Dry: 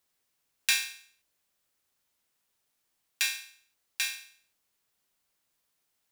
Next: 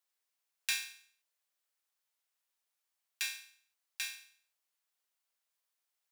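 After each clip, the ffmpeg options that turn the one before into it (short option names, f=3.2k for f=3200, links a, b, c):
-af "highpass=580,volume=-8dB"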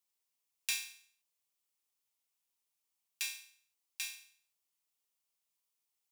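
-af "equalizer=f=630:t=o:w=0.67:g=-6,equalizer=f=1.6k:t=o:w=0.67:g=-11,equalizer=f=4k:t=o:w=0.67:g=-3,volume=1dB"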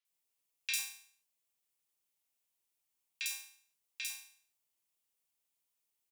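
-filter_complex "[0:a]acrossover=split=1200|4900[a][b][c];[c]adelay=50[d];[a]adelay=100[e];[e][b][d]amix=inputs=3:normalize=0,volume=1.5dB"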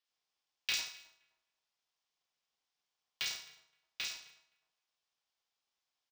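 -filter_complex "[0:a]highpass=f=490:w=0.5412,highpass=f=490:w=1.3066,equalizer=f=930:t=q:w=4:g=9,equalizer=f=1.6k:t=q:w=4:g=4,equalizer=f=3.4k:t=q:w=4:g=5,equalizer=f=5.1k:t=q:w=4:g=6,lowpass=f=6.1k:w=0.5412,lowpass=f=6.1k:w=1.3066,asplit=2[a][b];[b]adelay=260,lowpass=f=1.1k:p=1,volume=-16dB,asplit=2[c][d];[d]adelay=260,lowpass=f=1.1k:p=1,volume=0.34,asplit=2[e][f];[f]adelay=260,lowpass=f=1.1k:p=1,volume=0.34[g];[a][c][e][g]amix=inputs=4:normalize=0,aeval=exprs='val(0)*sgn(sin(2*PI*150*n/s))':c=same"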